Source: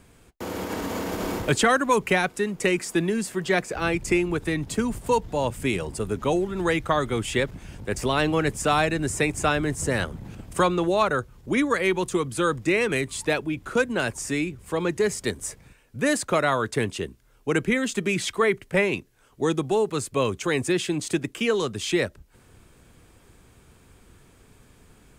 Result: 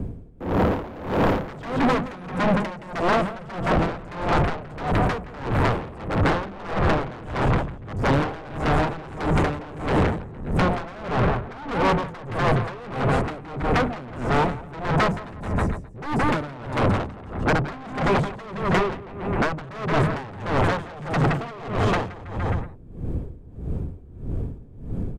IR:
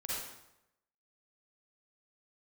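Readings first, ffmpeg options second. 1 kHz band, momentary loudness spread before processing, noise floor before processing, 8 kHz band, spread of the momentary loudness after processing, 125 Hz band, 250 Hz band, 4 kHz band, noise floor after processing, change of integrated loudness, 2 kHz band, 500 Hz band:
+3.5 dB, 8 LU, -56 dBFS, -14.5 dB, 10 LU, +7.0 dB, +0.5 dB, -4.0 dB, -40 dBFS, 0.0 dB, -1.5 dB, -1.5 dB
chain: -filter_complex "[0:a]bandreject=f=50:t=h:w=6,bandreject=f=100:t=h:w=6,bandreject=f=150:t=h:w=6,bandreject=f=200:t=h:w=6,acrossover=split=83|5900[s0][s1][s2];[s0]acompressor=threshold=0.00562:ratio=4[s3];[s1]acompressor=threshold=0.0631:ratio=4[s4];[s2]acompressor=threshold=0.0112:ratio=4[s5];[s3][s4][s5]amix=inputs=3:normalize=0,bass=f=250:g=7,treble=f=4000:g=-1,acrossover=split=650[s6][s7];[s6]aeval=exprs='0.237*sin(PI/2*7.08*val(0)/0.237)':c=same[s8];[s7]equalizer=f=8900:t=o:w=2.3:g=-9.5[s9];[s8][s9]amix=inputs=2:normalize=0,aecho=1:1:170|323|460.7|584.6|696.2:0.631|0.398|0.251|0.158|0.1,asoftclip=type=tanh:threshold=0.133,aeval=exprs='val(0)*pow(10,-20*(0.5-0.5*cos(2*PI*1.6*n/s))/20)':c=same,volume=1.26"

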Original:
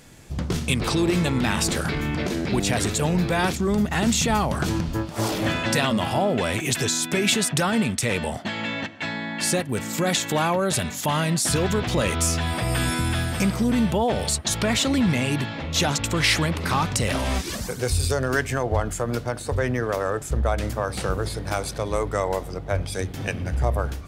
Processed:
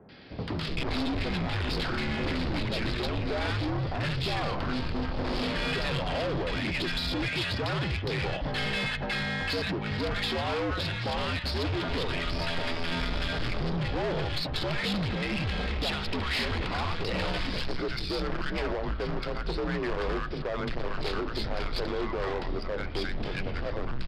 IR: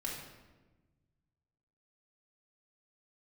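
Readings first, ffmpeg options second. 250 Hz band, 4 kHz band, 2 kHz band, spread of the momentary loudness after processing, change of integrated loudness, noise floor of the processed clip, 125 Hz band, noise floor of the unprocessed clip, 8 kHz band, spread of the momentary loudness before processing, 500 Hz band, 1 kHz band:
-8.5 dB, -5.0 dB, -5.0 dB, 4 LU, -7.0 dB, -34 dBFS, -7.5 dB, -35 dBFS, -24.5 dB, 7 LU, -7.0 dB, -7.5 dB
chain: -filter_complex "[0:a]alimiter=limit=0.133:level=0:latency=1:release=107,acrossover=split=190|1100[s0][s1][s2];[s2]adelay=90[s3];[s0]adelay=380[s4];[s4][s1][s3]amix=inputs=3:normalize=0,aresample=11025,volume=39.8,asoftclip=hard,volume=0.0251,aresample=44100,aeval=exprs='0.0531*(cos(1*acos(clip(val(0)/0.0531,-1,1)))-cos(1*PI/2))+0.0075*(cos(3*acos(clip(val(0)/0.0531,-1,1)))-cos(3*PI/2))+0.00133*(cos(4*acos(clip(val(0)/0.0531,-1,1)))-cos(4*PI/2))+0.000841*(cos(6*acos(clip(val(0)/0.0531,-1,1)))-cos(6*PI/2))':c=same,afreqshift=-76,volume=2.37"

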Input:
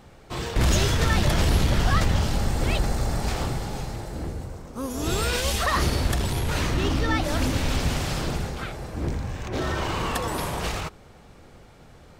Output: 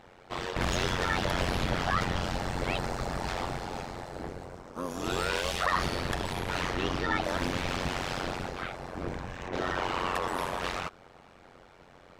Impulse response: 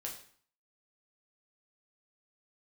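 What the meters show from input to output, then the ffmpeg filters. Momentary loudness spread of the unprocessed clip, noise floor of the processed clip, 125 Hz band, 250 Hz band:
12 LU, -56 dBFS, -11.5 dB, -7.0 dB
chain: -filter_complex "[0:a]asplit=2[s0][s1];[s1]highpass=f=720:p=1,volume=5.01,asoftclip=type=tanh:threshold=0.316[s2];[s0][s2]amix=inputs=2:normalize=0,lowpass=f=2000:p=1,volume=0.501,tremolo=f=90:d=0.974,volume=0.708"

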